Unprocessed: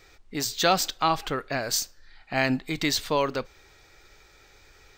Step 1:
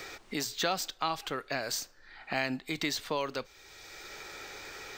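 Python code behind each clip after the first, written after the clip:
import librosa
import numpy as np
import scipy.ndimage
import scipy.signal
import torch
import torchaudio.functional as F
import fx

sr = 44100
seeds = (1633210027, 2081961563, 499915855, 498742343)

y = fx.low_shelf(x, sr, hz=160.0, db=-8.0)
y = fx.band_squash(y, sr, depth_pct=70)
y = y * librosa.db_to_amplitude(-6.0)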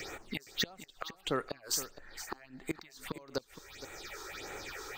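y = fx.gate_flip(x, sr, shuts_db=-21.0, range_db=-25)
y = fx.phaser_stages(y, sr, stages=6, low_hz=160.0, high_hz=4900.0, hz=1.6, feedback_pct=25)
y = y + 10.0 ** (-13.0 / 20.0) * np.pad(y, (int(466 * sr / 1000.0), 0))[:len(y)]
y = y * librosa.db_to_amplitude(3.5)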